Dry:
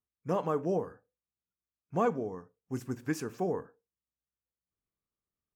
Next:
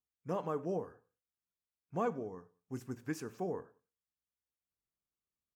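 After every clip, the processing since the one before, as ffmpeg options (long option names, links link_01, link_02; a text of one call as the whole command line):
ffmpeg -i in.wav -af "aecho=1:1:97|194:0.0631|0.024,volume=-6dB" out.wav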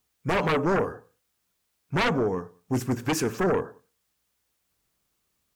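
ffmpeg -i in.wav -af "aeval=exprs='0.0708*sin(PI/2*3.98*val(0)/0.0708)':channel_layout=same,volume=3.5dB" out.wav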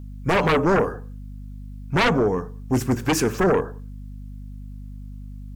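ffmpeg -i in.wav -af "aeval=exprs='val(0)+0.01*(sin(2*PI*50*n/s)+sin(2*PI*2*50*n/s)/2+sin(2*PI*3*50*n/s)/3+sin(2*PI*4*50*n/s)/4+sin(2*PI*5*50*n/s)/5)':channel_layout=same,volume=5dB" out.wav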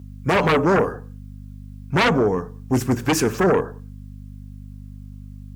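ffmpeg -i in.wav -af "highpass=57,volume=1.5dB" out.wav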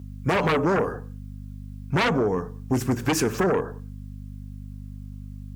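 ffmpeg -i in.wav -af "acompressor=threshold=-19dB:ratio=6" out.wav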